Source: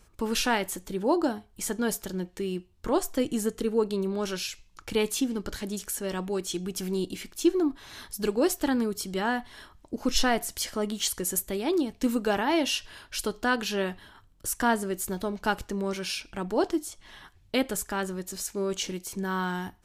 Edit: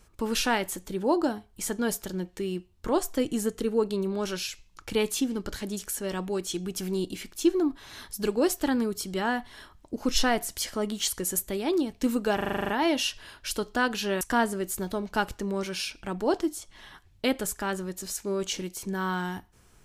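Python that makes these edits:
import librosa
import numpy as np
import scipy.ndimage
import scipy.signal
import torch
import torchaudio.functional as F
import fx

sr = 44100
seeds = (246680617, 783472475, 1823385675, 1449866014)

y = fx.edit(x, sr, fx.stutter(start_s=12.36, slice_s=0.04, count=9),
    fx.cut(start_s=13.89, length_s=0.62), tone=tone)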